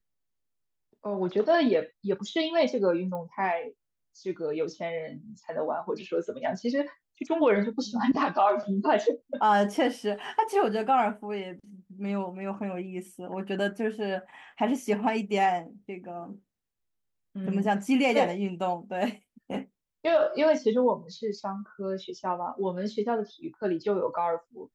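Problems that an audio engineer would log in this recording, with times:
0:03.15: click −26 dBFS

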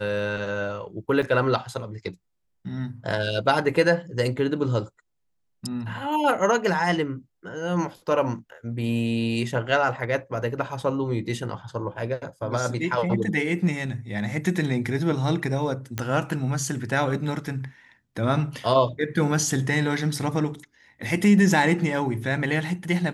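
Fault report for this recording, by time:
0:01.22–0:01.23: drop-out 5.5 ms
0:15.98: click −12 dBFS

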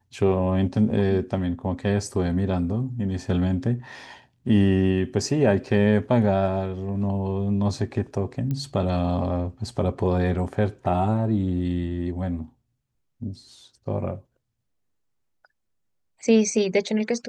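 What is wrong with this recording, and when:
0:08.51: click −18 dBFS

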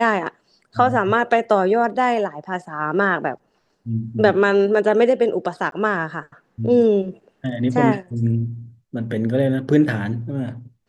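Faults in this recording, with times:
0:05.71–0:05.72: drop-out 12 ms

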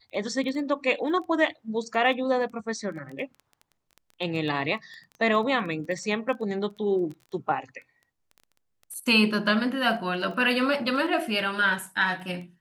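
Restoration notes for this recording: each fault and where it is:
surface crackle 11 per second −35 dBFS

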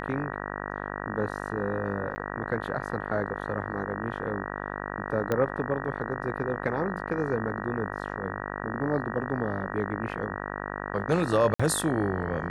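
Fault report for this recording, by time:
mains buzz 50 Hz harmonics 38 −35 dBFS
0:02.15–0:02.16: drop-out 10 ms
0:05.32: click −14 dBFS
0:11.54–0:11.60: drop-out 55 ms

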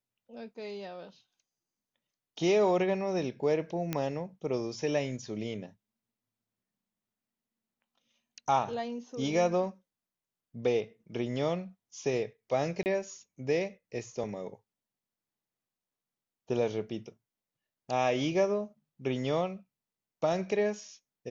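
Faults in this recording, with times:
0:03.93: click −16 dBFS
0:12.83–0:12.86: drop-out 29 ms

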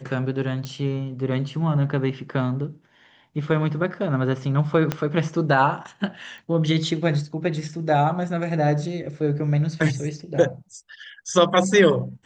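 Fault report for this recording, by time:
0:00.65: click −17 dBFS
0:02.32: drop-out 3 ms
0:04.92: click −9 dBFS
0:06.38: click

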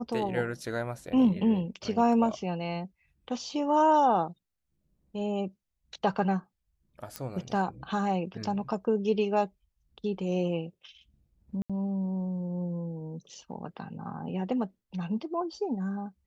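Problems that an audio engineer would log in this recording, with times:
0:07.16: click −18 dBFS
0:11.62–0:11.70: drop-out 76 ms

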